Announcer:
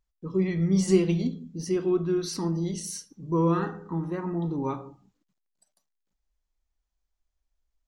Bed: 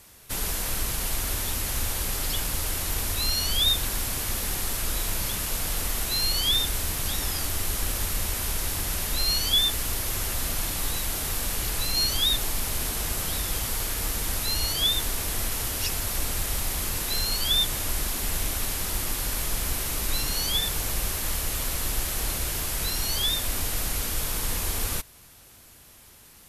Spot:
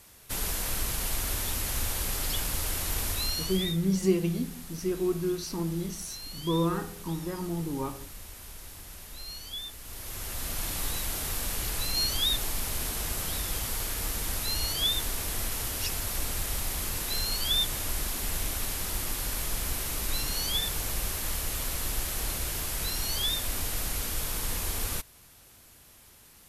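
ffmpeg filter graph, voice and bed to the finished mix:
ffmpeg -i stem1.wav -i stem2.wav -filter_complex "[0:a]adelay=3150,volume=-3.5dB[link_01];[1:a]volume=10.5dB,afade=type=out:start_time=3.09:duration=0.68:silence=0.199526,afade=type=in:start_time=9.81:duration=0.93:silence=0.223872[link_02];[link_01][link_02]amix=inputs=2:normalize=0" out.wav

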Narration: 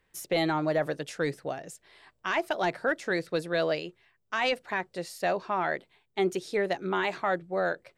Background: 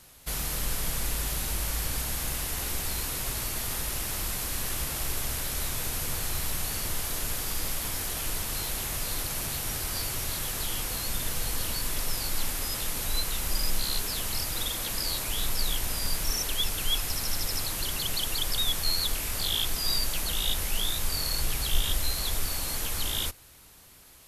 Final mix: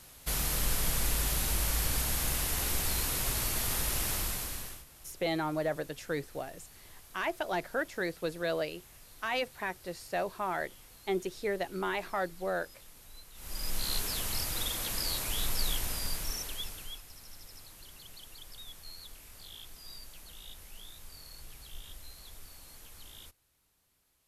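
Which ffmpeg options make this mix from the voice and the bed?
ffmpeg -i stem1.wav -i stem2.wav -filter_complex "[0:a]adelay=4900,volume=-5dB[link_01];[1:a]volume=20dB,afade=type=out:start_time=4.09:duration=0.75:silence=0.0707946,afade=type=in:start_time=13.34:duration=0.59:silence=0.1,afade=type=out:start_time=15.7:duration=1.33:silence=0.133352[link_02];[link_01][link_02]amix=inputs=2:normalize=0" out.wav

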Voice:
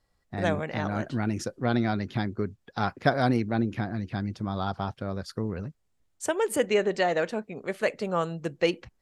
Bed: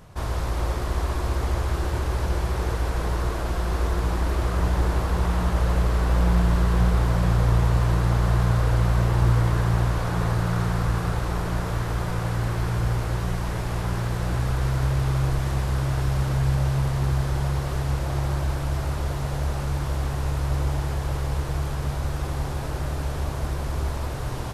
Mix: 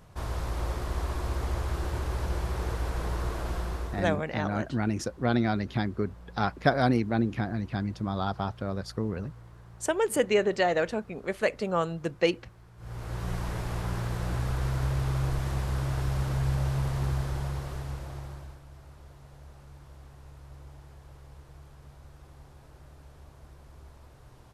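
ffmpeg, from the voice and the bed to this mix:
ffmpeg -i stem1.wav -i stem2.wav -filter_complex "[0:a]adelay=3600,volume=0dB[link_01];[1:a]volume=17dB,afade=type=out:start_time=3.55:duration=0.64:silence=0.0749894,afade=type=in:start_time=12.77:duration=0.58:silence=0.0707946,afade=type=out:start_time=17.04:duration=1.57:silence=0.125893[link_02];[link_01][link_02]amix=inputs=2:normalize=0" out.wav

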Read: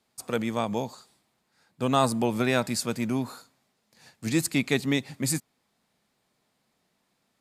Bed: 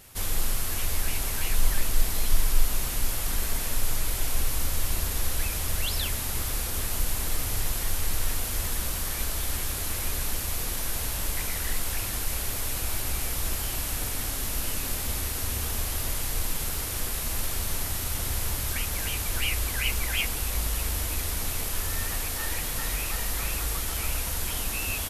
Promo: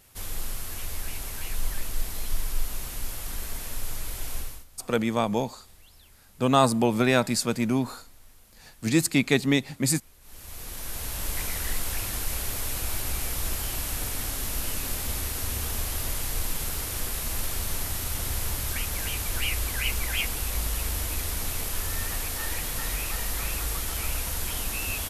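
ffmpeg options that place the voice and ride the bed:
ffmpeg -i stem1.wav -i stem2.wav -filter_complex "[0:a]adelay=4600,volume=3dB[link_01];[1:a]volume=20dB,afade=type=out:start_time=4.36:duration=0.29:silence=0.0944061,afade=type=in:start_time=10.21:duration=1.19:silence=0.0501187[link_02];[link_01][link_02]amix=inputs=2:normalize=0" out.wav

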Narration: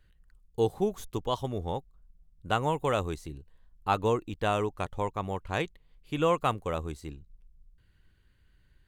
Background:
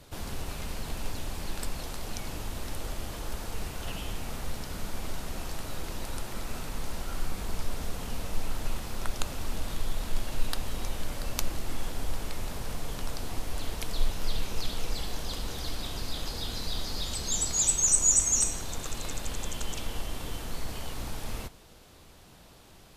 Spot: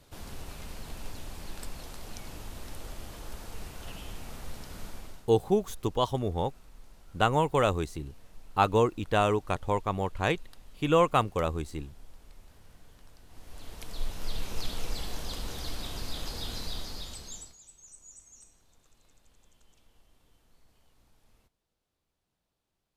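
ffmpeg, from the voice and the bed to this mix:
ffmpeg -i stem1.wav -i stem2.wav -filter_complex "[0:a]adelay=4700,volume=3dB[link_01];[1:a]volume=13.5dB,afade=type=out:start_time=4.85:duration=0.44:silence=0.16788,afade=type=in:start_time=13.27:duration=1.35:silence=0.105925,afade=type=out:start_time=16.56:duration=1.01:silence=0.0421697[link_02];[link_01][link_02]amix=inputs=2:normalize=0" out.wav

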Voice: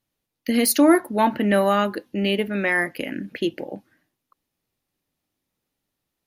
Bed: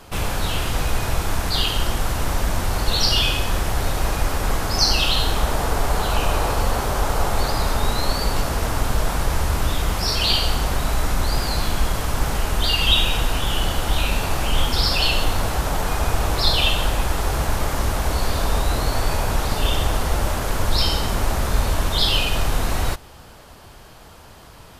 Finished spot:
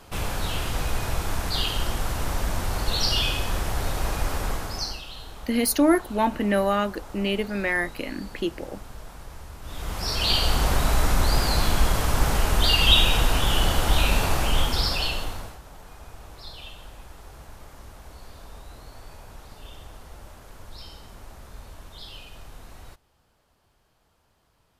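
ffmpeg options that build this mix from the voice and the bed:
ffmpeg -i stem1.wav -i stem2.wav -filter_complex "[0:a]adelay=5000,volume=-3.5dB[link_01];[1:a]volume=15.5dB,afade=type=out:start_time=4.38:duration=0.64:silence=0.16788,afade=type=in:start_time=9.62:duration=1.06:silence=0.0944061,afade=type=out:start_time=14.2:duration=1.39:silence=0.0707946[link_02];[link_01][link_02]amix=inputs=2:normalize=0" out.wav

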